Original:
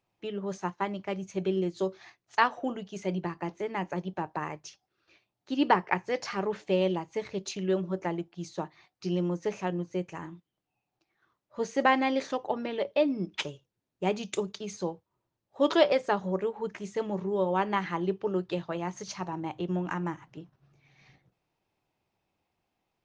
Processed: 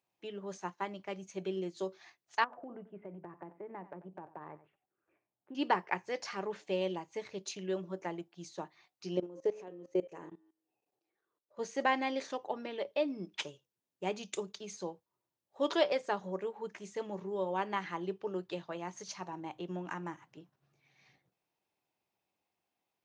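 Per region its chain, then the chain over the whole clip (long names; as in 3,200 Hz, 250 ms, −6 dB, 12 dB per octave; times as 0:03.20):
0:02.44–0:05.55: Gaussian smoothing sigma 5.3 samples + downward compressor 10 to 1, threshold −33 dBFS + single-tap delay 91 ms −15.5 dB
0:09.17–0:11.59: parametric band 440 Hz +14.5 dB 1.2 octaves + hum removal 106.7 Hz, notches 39 + output level in coarse steps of 20 dB
whole clip: high-pass filter 260 Hz 6 dB per octave; high-shelf EQ 7,500 Hz +6.5 dB; notch filter 1,300 Hz, Q 26; level −6 dB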